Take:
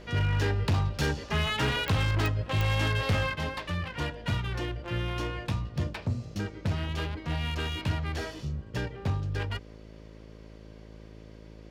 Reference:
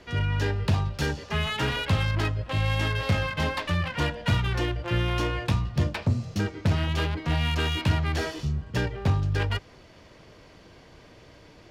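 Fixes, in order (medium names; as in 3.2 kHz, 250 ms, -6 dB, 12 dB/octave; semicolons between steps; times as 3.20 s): clip repair -21 dBFS; de-click; de-hum 54 Hz, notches 11; trim 0 dB, from 3.35 s +6 dB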